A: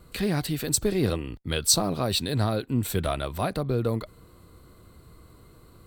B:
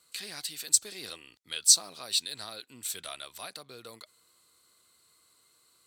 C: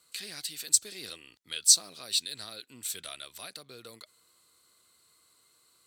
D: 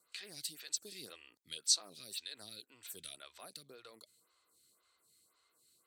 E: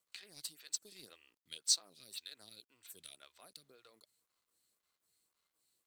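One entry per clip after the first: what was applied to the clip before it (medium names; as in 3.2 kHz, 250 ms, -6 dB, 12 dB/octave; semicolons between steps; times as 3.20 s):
band-pass filter 6.7 kHz, Q 1; trim +3 dB
dynamic bell 900 Hz, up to -7 dB, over -56 dBFS, Q 1.3
lamp-driven phase shifter 1.9 Hz; trim -4 dB
companding laws mixed up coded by A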